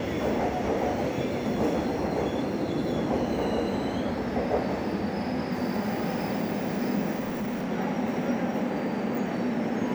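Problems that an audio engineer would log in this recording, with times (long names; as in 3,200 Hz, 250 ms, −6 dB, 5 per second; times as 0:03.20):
0:07.19–0:07.72: clipping −27 dBFS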